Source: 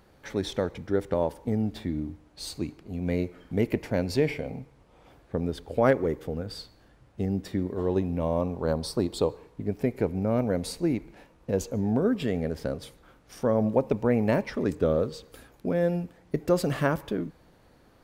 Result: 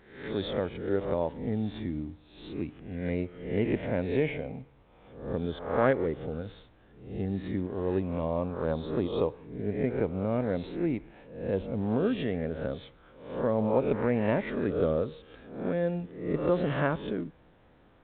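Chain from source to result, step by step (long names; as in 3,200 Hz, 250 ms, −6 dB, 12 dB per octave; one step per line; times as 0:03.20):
peak hold with a rise ahead of every peak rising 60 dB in 0.62 s
level −4 dB
mu-law 64 kbit/s 8,000 Hz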